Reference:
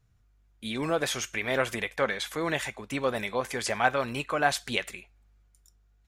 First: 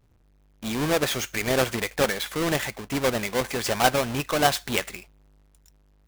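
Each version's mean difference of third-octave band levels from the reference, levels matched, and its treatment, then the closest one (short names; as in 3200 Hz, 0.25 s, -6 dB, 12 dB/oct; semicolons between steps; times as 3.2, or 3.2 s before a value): 6.0 dB: half-waves squared off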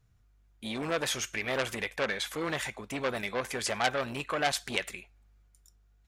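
2.5 dB: core saturation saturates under 3900 Hz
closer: second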